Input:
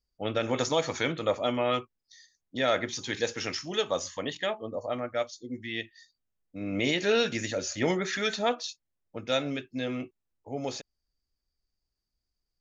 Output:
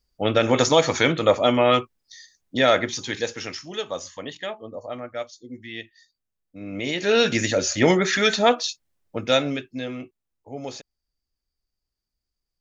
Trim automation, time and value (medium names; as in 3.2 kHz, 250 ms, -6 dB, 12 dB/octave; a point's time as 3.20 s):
2.56 s +9.5 dB
3.61 s -1 dB
6.85 s -1 dB
7.31 s +9.5 dB
9.25 s +9.5 dB
9.95 s 0 dB